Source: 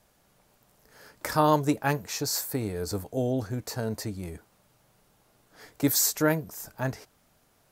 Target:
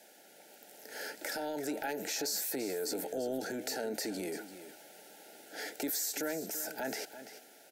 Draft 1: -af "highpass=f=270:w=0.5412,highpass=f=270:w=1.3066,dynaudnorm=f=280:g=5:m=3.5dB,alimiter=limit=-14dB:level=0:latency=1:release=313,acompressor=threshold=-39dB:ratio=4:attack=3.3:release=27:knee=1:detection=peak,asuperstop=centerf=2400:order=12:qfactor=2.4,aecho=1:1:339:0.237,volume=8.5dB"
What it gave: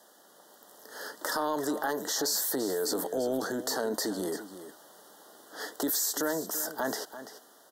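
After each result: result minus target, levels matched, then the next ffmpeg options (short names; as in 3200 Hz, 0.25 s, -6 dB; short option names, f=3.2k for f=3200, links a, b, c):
compressor: peak gain reduction -5.5 dB; 1000 Hz band +2.0 dB
-af "highpass=f=270:w=0.5412,highpass=f=270:w=1.3066,dynaudnorm=f=280:g=5:m=3.5dB,alimiter=limit=-14dB:level=0:latency=1:release=313,acompressor=threshold=-46.5dB:ratio=4:attack=3.3:release=27:knee=1:detection=peak,asuperstop=centerf=2400:order=12:qfactor=2.4,aecho=1:1:339:0.237,volume=8.5dB"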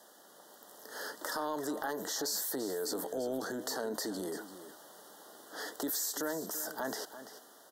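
1000 Hz band +2.5 dB
-af "highpass=f=270:w=0.5412,highpass=f=270:w=1.3066,dynaudnorm=f=280:g=5:m=3.5dB,alimiter=limit=-14dB:level=0:latency=1:release=313,acompressor=threshold=-46.5dB:ratio=4:attack=3.3:release=27:knee=1:detection=peak,asuperstop=centerf=1100:order=12:qfactor=2.4,aecho=1:1:339:0.237,volume=8.5dB"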